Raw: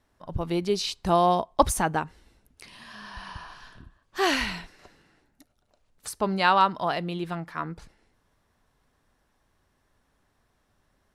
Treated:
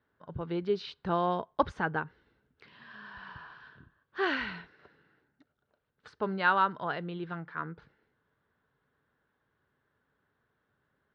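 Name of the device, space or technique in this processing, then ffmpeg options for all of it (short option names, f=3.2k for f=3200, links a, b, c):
guitar cabinet: -af "highpass=88,equalizer=f=140:t=q:w=4:g=5,equalizer=f=440:t=q:w=4:g=6,equalizer=f=700:t=q:w=4:g=-4,equalizer=f=1.5k:t=q:w=4:g=9,equalizer=f=2.5k:t=q:w=4:g=-4,lowpass=f=3.6k:w=0.5412,lowpass=f=3.6k:w=1.3066,volume=-7.5dB"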